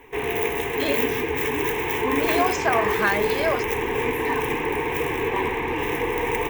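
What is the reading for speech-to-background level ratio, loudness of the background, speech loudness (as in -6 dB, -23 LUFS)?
-2.5 dB, -24.0 LUFS, -26.5 LUFS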